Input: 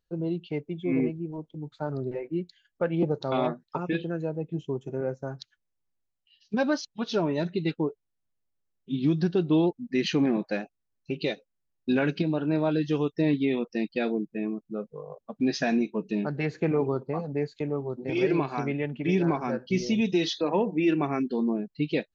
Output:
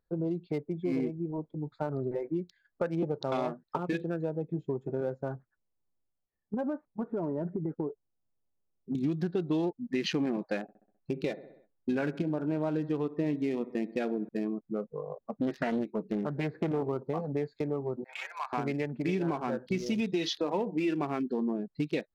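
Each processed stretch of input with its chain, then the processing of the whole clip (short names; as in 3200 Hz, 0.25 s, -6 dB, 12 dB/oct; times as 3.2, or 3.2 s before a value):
5.35–8.95 Bessel low-pass 950 Hz, order 8 + compressor 12:1, threshold -28 dBFS
10.62–14.29 air absorption 260 m + feedback echo 65 ms, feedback 56%, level -17.5 dB
15.01–16.89 short-mantissa float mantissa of 4-bit + air absorption 260 m + Doppler distortion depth 0.35 ms
18.04–18.53 inverse Chebyshev high-pass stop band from 360 Hz, stop band 50 dB + high shelf 4400 Hz -7 dB + upward expander, over -47 dBFS
whole clip: Wiener smoothing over 15 samples; low shelf 270 Hz -4.5 dB; compressor 3:1, threshold -34 dBFS; gain +4.5 dB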